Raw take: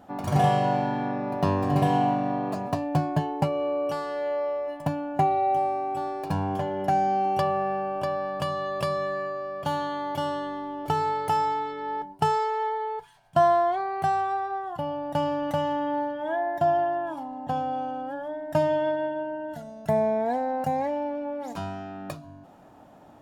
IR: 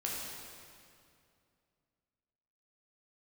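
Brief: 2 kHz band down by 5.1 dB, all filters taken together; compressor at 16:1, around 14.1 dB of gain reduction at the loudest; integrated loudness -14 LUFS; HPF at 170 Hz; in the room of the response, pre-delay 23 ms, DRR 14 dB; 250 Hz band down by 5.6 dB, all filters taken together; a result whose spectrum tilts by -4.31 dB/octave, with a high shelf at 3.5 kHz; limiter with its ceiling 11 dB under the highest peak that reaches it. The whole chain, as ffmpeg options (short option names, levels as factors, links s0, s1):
-filter_complex "[0:a]highpass=170,equalizer=f=250:t=o:g=-6,equalizer=f=2000:t=o:g=-8,highshelf=f=3500:g=5.5,acompressor=threshold=0.0251:ratio=16,alimiter=level_in=2.24:limit=0.0631:level=0:latency=1,volume=0.447,asplit=2[s0][s1];[1:a]atrim=start_sample=2205,adelay=23[s2];[s1][s2]afir=irnorm=-1:irlink=0,volume=0.133[s3];[s0][s3]amix=inputs=2:normalize=0,volume=16.8"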